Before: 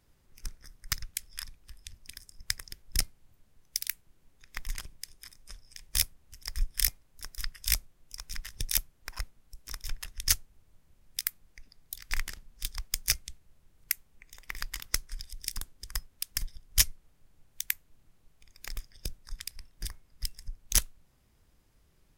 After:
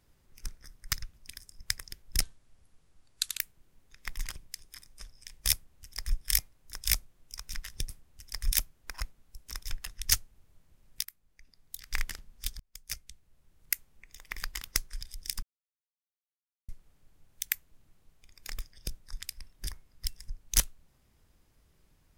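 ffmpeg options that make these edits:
ffmpeg -i in.wav -filter_complex "[0:a]asplit=11[link_01][link_02][link_03][link_04][link_05][link_06][link_07][link_08][link_09][link_10][link_11];[link_01]atrim=end=1.152[link_12];[link_02]atrim=start=1.948:end=3.024[link_13];[link_03]atrim=start=3.02:end=3.89,asetpts=PTS-STARTPTS,asetrate=32634,aresample=44100,atrim=end_sample=51847,asetpts=PTS-STARTPTS[link_14];[link_04]atrim=start=3.886:end=7.302[link_15];[link_05]atrim=start=7.608:end=8.702[link_16];[link_06]atrim=start=6.028:end=6.652[link_17];[link_07]atrim=start=8.698:end=11.23,asetpts=PTS-STARTPTS,afade=type=out:start_time=2.528:duration=0.004:curve=hsin:silence=0.133352[link_18];[link_08]atrim=start=11.23:end=12.78,asetpts=PTS-STARTPTS,afade=type=in:duration=0.96:silence=0.133352,afade=type=out:start_time=1.546:duration=0.004:curve=hsin[link_19];[link_09]atrim=start=12.78:end=15.61,asetpts=PTS-STARTPTS,afade=type=in:duration=1.14,afade=type=out:start_time=2.826:duration=0.004:curve=hsin[link_20];[link_10]atrim=start=15.61:end=16.87,asetpts=PTS-STARTPTS,volume=0[link_21];[link_11]atrim=start=16.87,asetpts=PTS-STARTPTS,afade=type=in:duration=0.004:curve=hsin[link_22];[link_12][link_13]acrossfade=duration=0.004:curve1=hsin:curve2=hsin[link_23];[link_23][link_14]acrossfade=duration=0.004:curve1=hsin:curve2=hsin[link_24];[link_24][link_15]acrossfade=duration=0.004:curve1=hsin:curve2=hsin[link_25];[link_25][link_16]acrossfade=duration=0.004:curve1=hsin:curve2=hsin[link_26];[link_26][link_17]acrossfade=duration=0.004:curve1=hsin:curve2=hsin[link_27];[link_18][link_19][link_20][link_21][link_22]concat=n=5:v=0:a=1[link_28];[link_27][link_28]acrossfade=duration=0.004:curve1=hsin:curve2=hsin" out.wav

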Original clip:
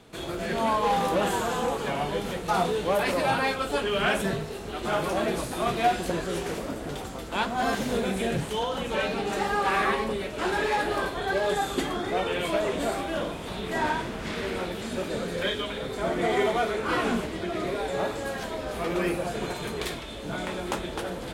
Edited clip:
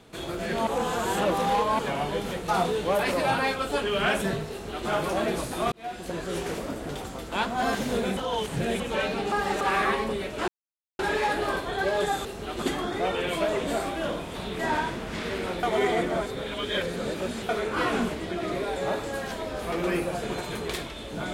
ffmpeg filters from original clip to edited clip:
ffmpeg -i in.wav -filter_complex "[0:a]asplit=13[link_01][link_02][link_03][link_04][link_05][link_06][link_07][link_08][link_09][link_10][link_11][link_12][link_13];[link_01]atrim=end=0.672[link_14];[link_02]atrim=start=0.668:end=1.792,asetpts=PTS-STARTPTS,areverse[link_15];[link_03]atrim=start=1.788:end=5.72,asetpts=PTS-STARTPTS,afade=type=out:start_time=3.928:duration=0.004:curve=hsin[link_16];[link_04]atrim=start=5.72:end=8.172,asetpts=PTS-STARTPTS,afade=type=in:duration=0.68[link_17];[link_05]atrim=start=8.168:end=8.802,asetpts=PTS-STARTPTS,areverse[link_18];[link_06]atrim=start=8.798:end=9.322[link_19];[link_07]atrim=start=9.318:end=9.612,asetpts=PTS-STARTPTS,areverse[link_20];[link_08]atrim=start=9.608:end=10.48,asetpts=PTS-STARTPTS,afade=type=out:start_time=0.868:duration=0.004:curve=hsin,apad=pad_dur=0.51[link_21];[link_09]atrim=start=10.48:end=11.742,asetpts=PTS-STARTPTS,afade=type=in:duration=0.004:curve=hsin[link_22];[link_10]atrim=start=4.508:end=4.882[link_23];[link_11]atrim=start=11.738:end=14.752[link_24];[link_12]atrim=start=14.748:end=16.612,asetpts=PTS-STARTPTS,areverse[link_25];[link_13]atrim=start=16.608[link_26];[link_14][link_15]acrossfade=duration=0.004:curve1=hsin:curve2=hsin[link_27];[link_16][link_17]concat=n=2:v=0:a=1[link_28];[link_27][link_28]acrossfade=duration=0.004:curve1=hsin:curve2=hsin[link_29];[link_29][link_18]acrossfade=duration=0.004:curve1=hsin:curve2=hsin[link_30];[link_30][link_19]acrossfade=duration=0.004:curve1=hsin:curve2=hsin[link_31];[link_31][link_20]acrossfade=duration=0.004:curve1=hsin:curve2=hsin[link_32];[link_21][link_22]concat=n=2:v=0:a=1[link_33];[link_32][link_33]acrossfade=duration=0.004:curve1=hsin:curve2=hsin[link_34];[link_34][link_23]acrossfade=duration=0.004:curve1=hsin:curve2=hsin[link_35];[link_35][link_24]acrossfade=duration=0.004:curve1=hsin:curve2=hsin[link_36];[link_36][link_25]acrossfade=duration=0.004:curve1=hsin:curve2=hsin[link_37];[link_37][link_26]acrossfade=duration=0.004:curve1=hsin:curve2=hsin" out.wav

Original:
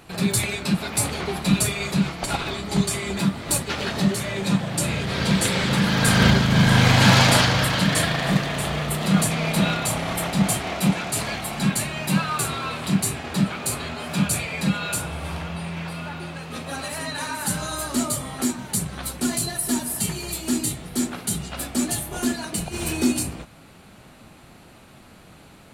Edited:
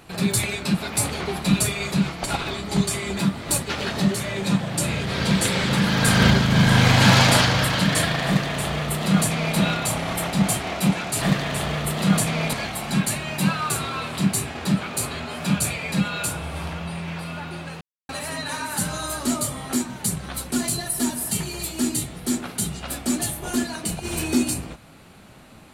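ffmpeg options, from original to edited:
ffmpeg -i in.wav -filter_complex "[0:a]asplit=5[link_01][link_02][link_03][link_04][link_05];[link_01]atrim=end=11.222[link_06];[link_02]atrim=start=8.258:end=9.572[link_07];[link_03]atrim=start=11.218:end=16.5,asetpts=PTS-STARTPTS,afade=type=out:start_time=5.278:duration=0.004:curve=hsin[link_08];[link_04]atrim=start=16.5:end=16.78,asetpts=PTS-STARTPTS,volume=0[link_09];[link_05]atrim=start=16.78,asetpts=PTS-STARTPTS,afade=type=in:duration=0.004:curve=hsin[link_10];[link_06][link_07]acrossfade=duration=0.004:curve1=hsin:curve2=hsin[link_11];[link_08][link_09][link_10]concat=n=3:v=0:a=1[link_12];[link_11][link_12]acrossfade=duration=0.004:curve1=hsin:curve2=hsin" out.wav

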